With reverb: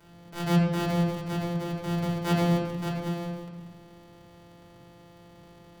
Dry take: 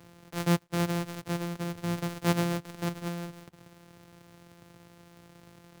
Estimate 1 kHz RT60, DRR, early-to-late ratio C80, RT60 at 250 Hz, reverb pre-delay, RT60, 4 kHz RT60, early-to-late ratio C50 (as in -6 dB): 0.85 s, -6.0 dB, 6.0 dB, 1.6 s, 3 ms, 1.0 s, 0.80 s, 3.0 dB